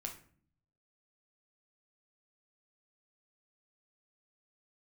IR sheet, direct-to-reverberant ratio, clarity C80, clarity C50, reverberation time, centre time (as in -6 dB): 1.5 dB, 14.5 dB, 9.5 dB, 0.50 s, 16 ms